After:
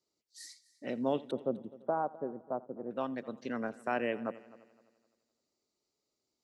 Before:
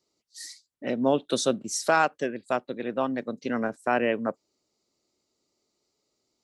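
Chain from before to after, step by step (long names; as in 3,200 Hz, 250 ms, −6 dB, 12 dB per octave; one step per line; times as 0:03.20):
0:01.31–0:02.91: inverse Chebyshev low-pass filter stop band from 3,300 Hz, stop band 60 dB
on a send: echo machine with several playback heads 85 ms, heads first and third, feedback 44%, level −21 dB
on the sum: level −8.5 dB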